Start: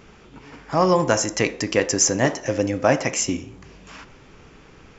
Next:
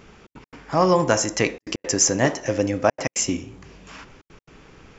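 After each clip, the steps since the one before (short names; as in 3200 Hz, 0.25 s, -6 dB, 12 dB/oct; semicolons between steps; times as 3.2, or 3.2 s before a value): step gate "xxx.x.xxxxxxxxx" 171 bpm -60 dB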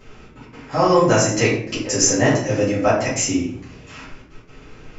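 shoebox room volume 72 m³, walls mixed, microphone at 2.1 m; gain -6 dB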